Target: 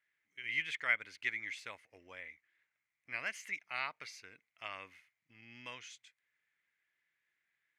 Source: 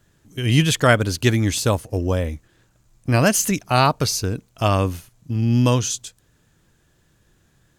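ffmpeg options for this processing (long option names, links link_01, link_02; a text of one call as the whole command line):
ffmpeg -i in.wav -af "bandpass=frequency=2100:width_type=q:width=10:csg=0,volume=-1.5dB" out.wav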